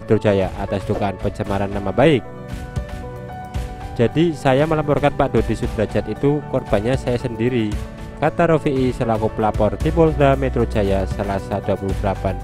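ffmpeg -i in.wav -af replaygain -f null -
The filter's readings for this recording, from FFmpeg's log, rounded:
track_gain = -1.3 dB
track_peak = 0.543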